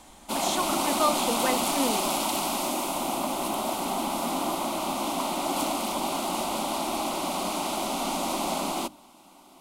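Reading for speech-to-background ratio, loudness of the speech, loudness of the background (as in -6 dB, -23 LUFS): -2.5 dB, -30.5 LUFS, -28.0 LUFS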